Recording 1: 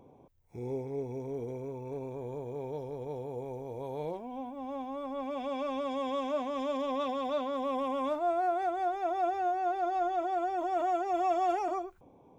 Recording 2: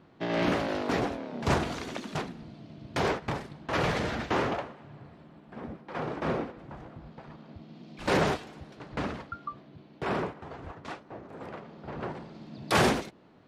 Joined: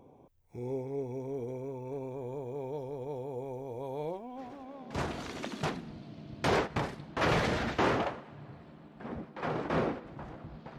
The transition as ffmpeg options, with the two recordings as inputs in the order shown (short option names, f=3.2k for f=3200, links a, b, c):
-filter_complex "[0:a]apad=whole_dur=10.78,atrim=end=10.78,atrim=end=5.59,asetpts=PTS-STARTPTS[a];[1:a]atrim=start=0.61:end=7.3,asetpts=PTS-STARTPTS[b];[a][b]acrossfade=d=1.5:c1=qua:c2=qua"